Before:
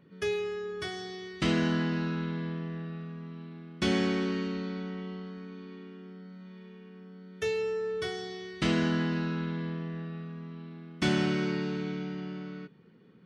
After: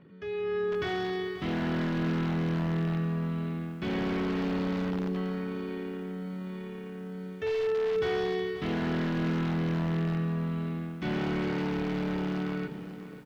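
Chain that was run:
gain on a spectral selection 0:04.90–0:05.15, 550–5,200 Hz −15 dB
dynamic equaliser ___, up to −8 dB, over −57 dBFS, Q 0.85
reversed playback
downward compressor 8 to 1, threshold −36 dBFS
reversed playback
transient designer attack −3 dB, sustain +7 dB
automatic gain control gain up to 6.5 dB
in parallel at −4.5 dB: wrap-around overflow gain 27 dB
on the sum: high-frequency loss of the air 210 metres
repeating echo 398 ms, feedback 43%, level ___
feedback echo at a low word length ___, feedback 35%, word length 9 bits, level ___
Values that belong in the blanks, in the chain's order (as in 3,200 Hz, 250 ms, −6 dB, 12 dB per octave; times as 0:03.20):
7,200 Hz, −23.5 dB, 534 ms, −13 dB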